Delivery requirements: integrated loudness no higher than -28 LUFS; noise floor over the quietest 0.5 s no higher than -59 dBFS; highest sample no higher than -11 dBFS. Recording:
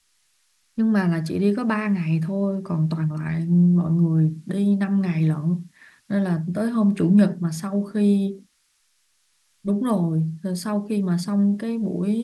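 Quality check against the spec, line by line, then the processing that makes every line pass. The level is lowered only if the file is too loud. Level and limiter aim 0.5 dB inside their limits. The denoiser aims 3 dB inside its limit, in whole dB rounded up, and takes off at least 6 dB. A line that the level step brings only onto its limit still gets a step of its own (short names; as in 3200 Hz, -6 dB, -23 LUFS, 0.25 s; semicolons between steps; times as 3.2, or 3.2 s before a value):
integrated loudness -22.0 LUFS: fail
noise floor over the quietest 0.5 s -66 dBFS: OK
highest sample -7.0 dBFS: fail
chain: gain -6.5 dB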